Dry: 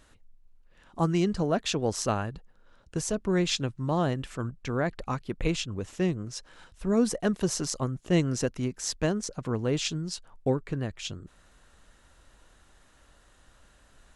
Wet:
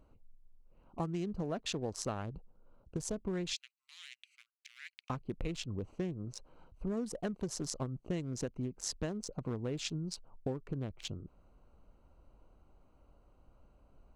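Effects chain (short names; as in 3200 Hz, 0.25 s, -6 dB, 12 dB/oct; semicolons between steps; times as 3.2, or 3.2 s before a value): Wiener smoothing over 25 samples; 3.53–5.1 elliptic high-pass 2100 Hz, stop band 80 dB; compressor 6:1, threshold -31 dBFS, peak gain reduction 12.5 dB; gain -2.5 dB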